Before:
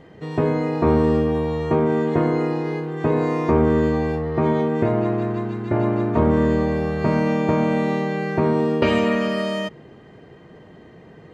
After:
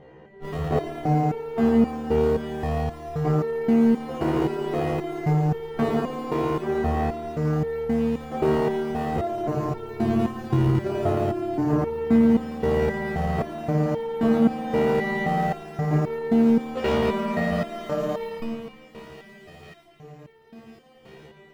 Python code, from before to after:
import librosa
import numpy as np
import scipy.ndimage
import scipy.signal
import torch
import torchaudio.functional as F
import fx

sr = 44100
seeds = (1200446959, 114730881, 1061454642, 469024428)

p1 = fx.self_delay(x, sr, depth_ms=0.27)
p2 = fx.schmitt(p1, sr, flips_db=-26.5)
p3 = p1 + F.gain(torch.from_numpy(p2), -5.0).numpy()
p4 = fx.high_shelf(p3, sr, hz=3400.0, db=-11.0)
p5 = fx.small_body(p4, sr, hz=(740.0, 2900.0), ring_ms=45, db=9)
p6 = p5 + fx.echo_wet_highpass(p5, sr, ms=755, feedback_pct=52, hz=2100.0, wet_db=-14.5, dry=0)
p7 = fx.rider(p6, sr, range_db=4, speed_s=0.5)
p8 = fx.hum_notches(p7, sr, base_hz=50, count=3)
p9 = fx.rev_fdn(p8, sr, rt60_s=1.3, lf_ratio=1.55, hf_ratio=0.35, size_ms=42.0, drr_db=6.5)
p10 = fx.stretch_grains(p9, sr, factor=1.9, grain_ms=56.0)
p11 = fx.resonator_held(p10, sr, hz=3.8, low_hz=65.0, high_hz=450.0)
y = F.gain(torch.from_numpy(p11), 4.5).numpy()